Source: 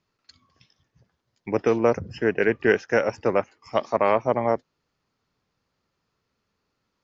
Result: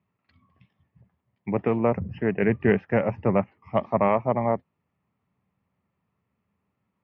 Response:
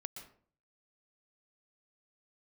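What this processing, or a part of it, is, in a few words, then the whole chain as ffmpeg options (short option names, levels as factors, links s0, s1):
bass cabinet: -filter_complex "[0:a]asettb=1/sr,asplit=3[s0][s1][s2];[s0]atrim=end=2.424[s3];[s1]atrim=start=2.42:end=4.08,asetpts=PTS-STARTPTS,afade=t=in:d=0.004:c=qsin,afade=t=out:st=1.656:d=0.004:c=qsin,lowshelf=f=200:g=7[s4];[s2]atrim=start=4.076[s5];[s3][s4]acrossfade=d=0.004:c1=hsin:c2=qsin[s6];[s6][s5]acrossfade=d=0.004:c1=qsin:c2=hsin,highpass=74,equalizer=f=81:t=q:w=4:g=7,equalizer=f=120:t=q:w=4:g=4,equalizer=f=190:t=q:w=4:g=8,equalizer=f=330:t=q:w=4:g=-4,equalizer=f=480:t=q:w=4:g=-5,equalizer=f=1500:t=q:w=4:g=-10,lowpass=f=2400:w=0.5412,lowpass=f=2400:w=1.3066"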